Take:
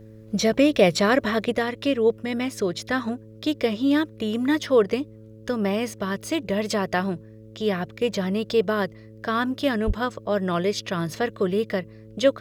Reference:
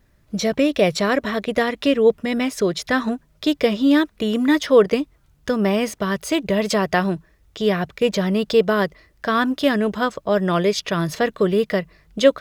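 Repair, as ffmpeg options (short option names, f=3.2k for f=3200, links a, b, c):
-filter_complex "[0:a]bandreject=f=109.3:t=h:w=4,bandreject=f=218.6:t=h:w=4,bandreject=f=327.9:t=h:w=4,bandreject=f=437.2:t=h:w=4,bandreject=f=546.5:t=h:w=4,asplit=3[a][b][c];[a]afade=t=out:st=9.86:d=0.02[d];[b]highpass=f=140:w=0.5412,highpass=f=140:w=1.3066,afade=t=in:st=9.86:d=0.02,afade=t=out:st=9.98:d=0.02[e];[c]afade=t=in:st=9.98:d=0.02[f];[d][e][f]amix=inputs=3:normalize=0,asetnsamples=n=441:p=0,asendcmd='1.52 volume volume 5dB',volume=0dB"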